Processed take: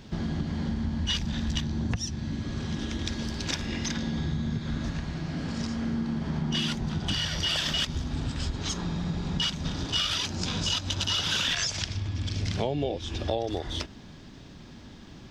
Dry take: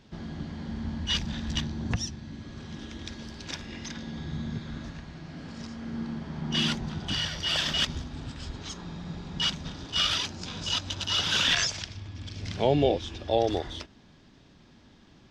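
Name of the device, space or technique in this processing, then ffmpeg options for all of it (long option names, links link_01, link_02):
ASMR close-microphone chain: -af "lowshelf=frequency=250:gain=4,acompressor=threshold=-33dB:ratio=6,highshelf=frequency=7900:gain=6.5,volume=7dB"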